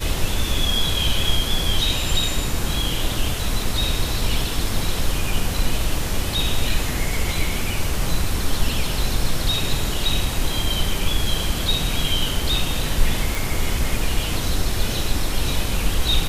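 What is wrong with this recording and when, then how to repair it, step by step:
13.35 s: pop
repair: de-click

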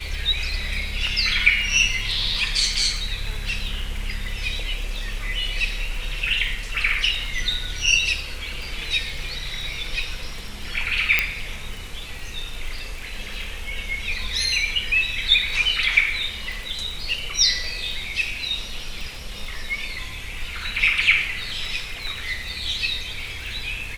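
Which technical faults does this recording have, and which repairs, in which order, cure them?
crackle 53 per s -31 dBFS
11.19 s: pop -3 dBFS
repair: de-click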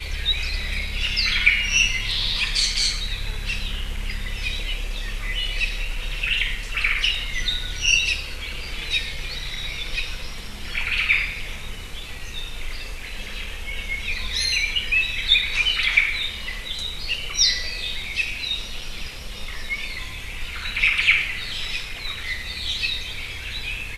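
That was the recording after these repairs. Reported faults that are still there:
nothing left

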